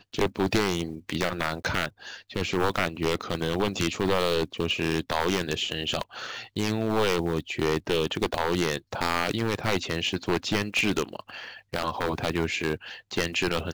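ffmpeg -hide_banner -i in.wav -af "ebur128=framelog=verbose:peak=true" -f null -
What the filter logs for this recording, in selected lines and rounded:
Integrated loudness:
  I:         -27.6 LUFS
  Threshold: -37.7 LUFS
Loudness range:
  LRA:         1.6 LU
  Threshold: -47.6 LUFS
  LRA low:   -28.5 LUFS
  LRA high:  -26.9 LUFS
True peak:
  Peak:      -11.0 dBFS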